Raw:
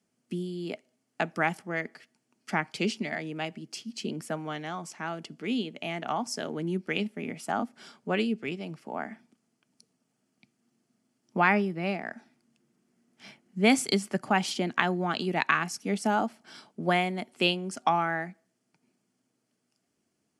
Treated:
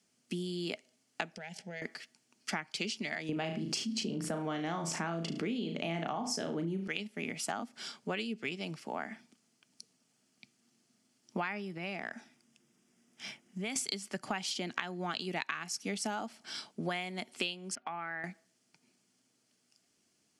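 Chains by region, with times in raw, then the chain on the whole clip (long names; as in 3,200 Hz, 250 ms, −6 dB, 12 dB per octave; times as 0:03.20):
0:01.35–0:01.82: low-pass filter 6,600 Hz + downward compressor 16 to 1, threshold −35 dBFS + phaser with its sweep stopped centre 310 Hz, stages 6
0:03.29–0:06.88: tilt shelving filter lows +7.5 dB, about 1,300 Hz + flutter between parallel walls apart 6.2 metres, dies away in 0.3 s + envelope flattener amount 50%
0:11.77–0:13.76: notch filter 4,300 Hz, Q 6 + downward compressor 4 to 1, threshold −35 dBFS
0:17.75–0:18.24: transistor ladder low-pass 2,700 Hz, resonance 35% + downward compressor 2 to 1, threshold −41 dBFS
whole clip: parametric band 5,200 Hz +10.5 dB 2.8 octaves; downward compressor 10 to 1, threshold −31 dBFS; level −1.5 dB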